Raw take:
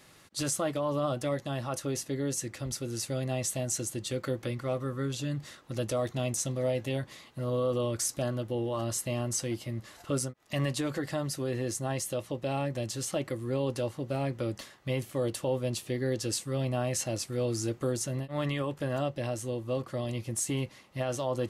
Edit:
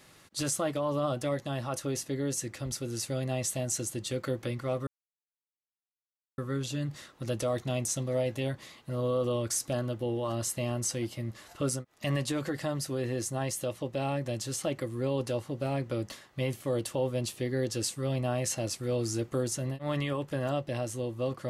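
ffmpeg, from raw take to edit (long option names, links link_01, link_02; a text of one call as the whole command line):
ffmpeg -i in.wav -filter_complex "[0:a]asplit=2[link_01][link_02];[link_01]atrim=end=4.87,asetpts=PTS-STARTPTS,afade=type=out:start_time=4.866:duration=0.004:curve=hsin,apad=pad_dur=1.51[link_03];[link_02]atrim=start=4.87,asetpts=PTS-STARTPTS,afade=type=in:duration=0.004:curve=hsin[link_04];[link_03][link_04]concat=n=2:v=0:a=1" out.wav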